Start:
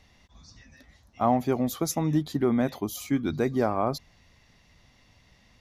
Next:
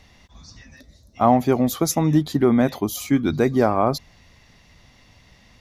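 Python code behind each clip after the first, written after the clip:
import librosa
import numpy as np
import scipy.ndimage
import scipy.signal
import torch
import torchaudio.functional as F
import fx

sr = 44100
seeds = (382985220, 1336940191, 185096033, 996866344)

y = fx.spec_box(x, sr, start_s=0.81, length_s=0.34, low_hz=670.0, high_hz=3500.0, gain_db=-13)
y = y * 10.0 ** (7.0 / 20.0)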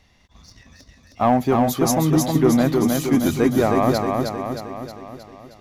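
y = fx.leveller(x, sr, passes=1)
y = fx.echo_feedback(y, sr, ms=313, feedback_pct=56, wet_db=-3.5)
y = y * 10.0 ** (-3.5 / 20.0)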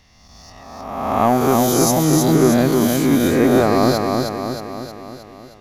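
y = fx.spec_swells(x, sr, rise_s=1.38)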